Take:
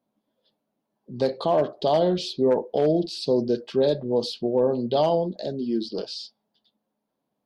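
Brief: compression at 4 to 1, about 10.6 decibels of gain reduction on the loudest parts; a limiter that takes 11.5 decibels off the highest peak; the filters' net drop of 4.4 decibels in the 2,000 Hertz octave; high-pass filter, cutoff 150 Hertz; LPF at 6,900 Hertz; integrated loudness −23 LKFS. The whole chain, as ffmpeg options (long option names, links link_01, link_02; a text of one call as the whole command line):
ffmpeg -i in.wav -af "highpass=150,lowpass=6900,equalizer=frequency=2000:width_type=o:gain=-6,acompressor=threshold=-30dB:ratio=4,volume=15.5dB,alimiter=limit=-14dB:level=0:latency=1" out.wav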